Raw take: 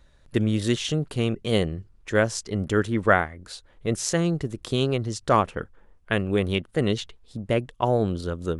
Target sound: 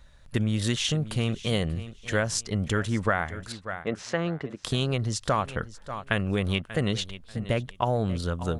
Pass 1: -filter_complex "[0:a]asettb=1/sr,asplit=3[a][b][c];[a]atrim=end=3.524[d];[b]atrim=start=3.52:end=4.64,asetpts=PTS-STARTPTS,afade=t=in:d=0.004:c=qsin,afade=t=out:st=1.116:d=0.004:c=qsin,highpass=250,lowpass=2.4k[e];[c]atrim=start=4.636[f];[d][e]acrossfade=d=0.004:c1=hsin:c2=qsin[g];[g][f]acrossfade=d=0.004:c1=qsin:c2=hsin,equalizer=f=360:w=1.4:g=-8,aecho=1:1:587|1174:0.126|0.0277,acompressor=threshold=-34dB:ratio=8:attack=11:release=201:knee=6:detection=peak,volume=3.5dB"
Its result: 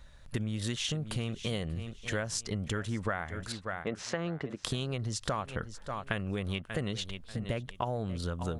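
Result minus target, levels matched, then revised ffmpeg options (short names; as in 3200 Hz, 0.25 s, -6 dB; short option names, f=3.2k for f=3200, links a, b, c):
compressor: peak gain reduction +9 dB
-filter_complex "[0:a]asettb=1/sr,asplit=3[a][b][c];[a]atrim=end=3.524[d];[b]atrim=start=3.52:end=4.64,asetpts=PTS-STARTPTS,afade=t=in:d=0.004:c=qsin,afade=t=out:st=1.116:d=0.004:c=qsin,highpass=250,lowpass=2.4k[e];[c]atrim=start=4.636[f];[d][e]acrossfade=d=0.004:c1=hsin:c2=qsin[g];[g][f]acrossfade=d=0.004:c1=qsin:c2=hsin,equalizer=f=360:w=1.4:g=-8,aecho=1:1:587|1174:0.126|0.0277,acompressor=threshold=-24dB:ratio=8:attack=11:release=201:knee=6:detection=peak,volume=3.5dB"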